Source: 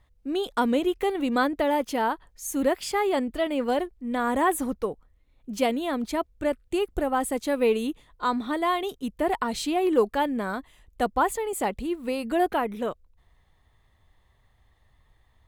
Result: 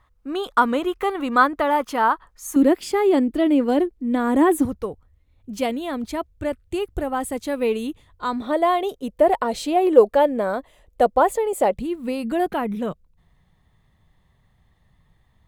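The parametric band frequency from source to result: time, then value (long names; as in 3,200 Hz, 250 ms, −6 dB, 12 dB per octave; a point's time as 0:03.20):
parametric band +13.5 dB 0.87 octaves
1,200 Hz
from 0:02.56 310 Hz
from 0:04.65 90 Hz
from 0:08.42 570 Hz
from 0:11.74 170 Hz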